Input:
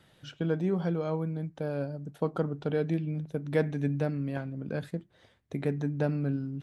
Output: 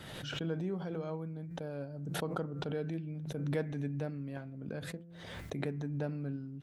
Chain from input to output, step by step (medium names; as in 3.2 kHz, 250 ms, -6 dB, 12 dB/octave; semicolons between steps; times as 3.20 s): de-hum 169.9 Hz, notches 16; swell ahead of each attack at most 33 dB/s; trim -8.5 dB